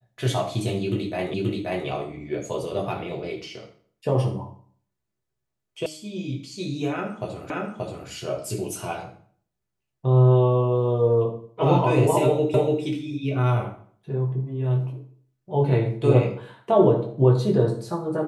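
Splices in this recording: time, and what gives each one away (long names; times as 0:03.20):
0:01.34: the same again, the last 0.53 s
0:05.86: cut off before it has died away
0:07.50: the same again, the last 0.58 s
0:12.54: the same again, the last 0.29 s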